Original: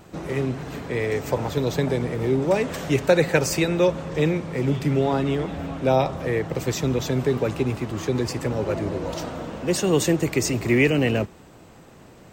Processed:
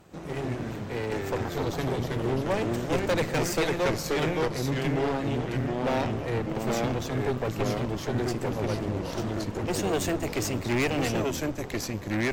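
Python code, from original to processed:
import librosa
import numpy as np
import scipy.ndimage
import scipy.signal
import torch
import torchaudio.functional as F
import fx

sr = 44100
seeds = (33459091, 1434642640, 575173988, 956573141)

y = fx.cheby_harmonics(x, sr, harmonics=(3, 6), levels_db=(-26, -15), full_scale_db=-5.0)
y = fx.echo_pitch(y, sr, ms=105, semitones=-2, count=2, db_per_echo=-3.0)
y = np.clip(10.0 ** (14.0 / 20.0) * y, -1.0, 1.0) / 10.0 ** (14.0 / 20.0)
y = y * librosa.db_to_amplitude(-6.0)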